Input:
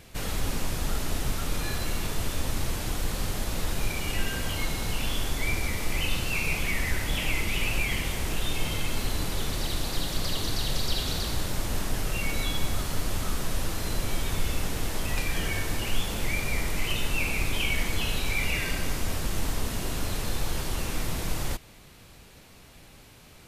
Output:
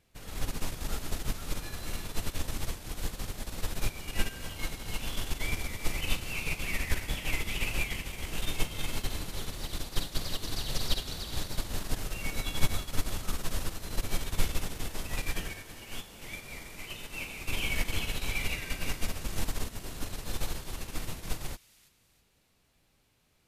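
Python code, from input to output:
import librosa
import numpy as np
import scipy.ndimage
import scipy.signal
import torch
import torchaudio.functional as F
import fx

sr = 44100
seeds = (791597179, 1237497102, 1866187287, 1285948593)

y = fx.low_shelf(x, sr, hz=94.0, db=-8.5, at=(15.52, 17.49))
y = fx.echo_wet_highpass(y, sr, ms=322, feedback_pct=36, hz=2400.0, wet_db=-4.5)
y = fx.upward_expand(y, sr, threshold_db=-34.0, expansion=2.5)
y = y * 10.0 ** (4.0 / 20.0)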